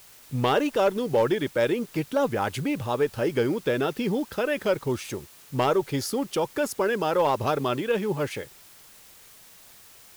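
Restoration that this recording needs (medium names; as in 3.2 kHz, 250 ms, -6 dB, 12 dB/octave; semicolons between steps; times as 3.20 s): clip repair -14.5 dBFS; noise reduction 20 dB, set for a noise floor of -51 dBFS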